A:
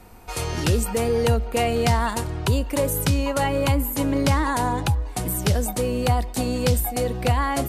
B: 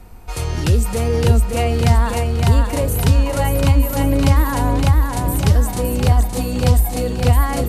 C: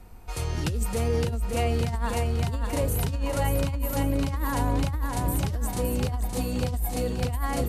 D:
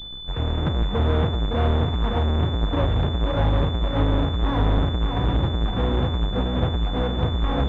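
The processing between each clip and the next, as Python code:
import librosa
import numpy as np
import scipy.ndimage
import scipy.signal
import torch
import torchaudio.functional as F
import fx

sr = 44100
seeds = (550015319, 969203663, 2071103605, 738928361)

y1 = fx.low_shelf(x, sr, hz=110.0, db=11.5)
y1 = fx.echo_feedback(y1, sr, ms=563, feedback_pct=45, wet_db=-4.0)
y2 = fx.over_compress(y1, sr, threshold_db=-16.0, ratio=-1.0)
y2 = y2 * 10.0 ** (-9.0 / 20.0)
y3 = fx.halfwave_hold(y2, sr)
y3 = fx.pwm(y3, sr, carrier_hz=3500.0)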